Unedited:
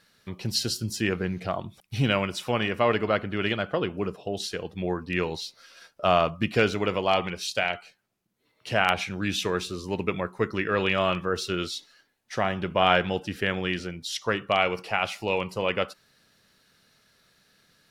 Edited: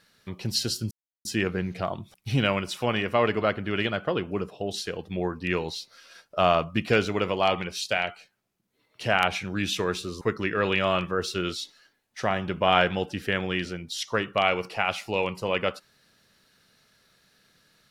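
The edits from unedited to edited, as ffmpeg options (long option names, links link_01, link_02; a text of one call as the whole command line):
ffmpeg -i in.wav -filter_complex "[0:a]asplit=3[link_01][link_02][link_03];[link_01]atrim=end=0.91,asetpts=PTS-STARTPTS,afade=type=out:start_time=0.906:duration=0.004:curve=hsin,apad=pad_dur=0.34[link_04];[link_02]atrim=start=0.91:end=9.872,asetpts=PTS-STARTPTS,afade=type=in:duration=0.004:curve=hsin[link_05];[link_03]atrim=start=10.348[link_06];[link_04][link_05]concat=n=2:v=0:a=1[link_07];[link_07][link_06]acrossfade=duration=0.004:curve1=hsin:curve2=hsin" out.wav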